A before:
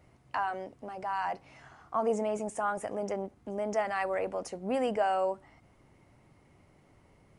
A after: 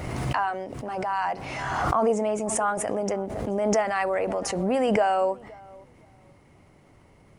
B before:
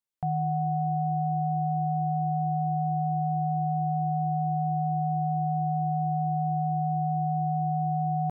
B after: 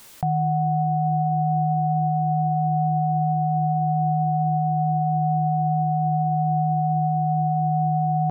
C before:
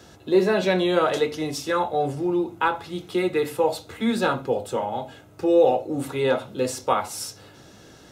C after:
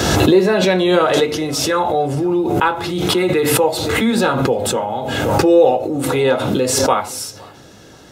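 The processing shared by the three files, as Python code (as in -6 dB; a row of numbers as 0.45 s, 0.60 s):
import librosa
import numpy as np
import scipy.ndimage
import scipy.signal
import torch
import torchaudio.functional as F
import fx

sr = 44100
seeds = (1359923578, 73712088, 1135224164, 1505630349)

y = fx.echo_tape(x, sr, ms=517, feedback_pct=24, wet_db=-22, lp_hz=1100.0, drive_db=5.0, wow_cents=39)
y = fx.pre_swell(y, sr, db_per_s=28.0)
y = y * librosa.db_to_amplitude(5.5)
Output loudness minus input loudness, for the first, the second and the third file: +7.0 LU, +5.5 LU, +8.0 LU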